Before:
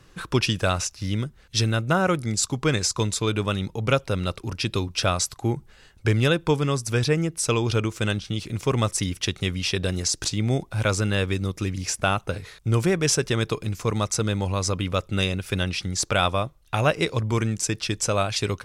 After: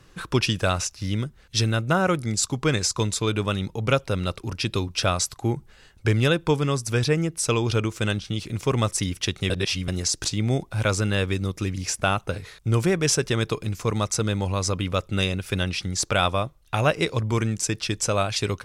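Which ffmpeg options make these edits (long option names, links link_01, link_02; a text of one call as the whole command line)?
ffmpeg -i in.wav -filter_complex "[0:a]asplit=3[link_01][link_02][link_03];[link_01]atrim=end=9.502[link_04];[link_02]atrim=start=9.498:end=9.882,asetpts=PTS-STARTPTS,areverse[link_05];[link_03]atrim=start=9.878[link_06];[link_04][link_05]acrossfade=duration=0.004:curve1=hsin:curve2=hsin[link_07];[link_07][link_06]acrossfade=duration=0.004:curve1=hsin:curve2=hsin" out.wav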